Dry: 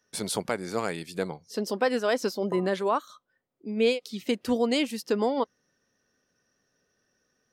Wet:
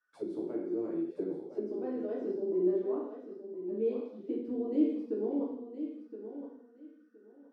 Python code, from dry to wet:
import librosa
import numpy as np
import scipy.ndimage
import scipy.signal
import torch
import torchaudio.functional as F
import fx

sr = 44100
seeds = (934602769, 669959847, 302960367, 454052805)

y = fx.low_shelf(x, sr, hz=220.0, db=4.0)
y = fx.rev_gated(y, sr, seeds[0], gate_ms=250, shape='falling', drr_db=-6.0)
y = fx.auto_wah(y, sr, base_hz=340.0, top_hz=1400.0, q=11.0, full_db=-21.5, direction='down')
y = fx.echo_feedback(y, sr, ms=1018, feedback_pct=20, wet_db=-10.5)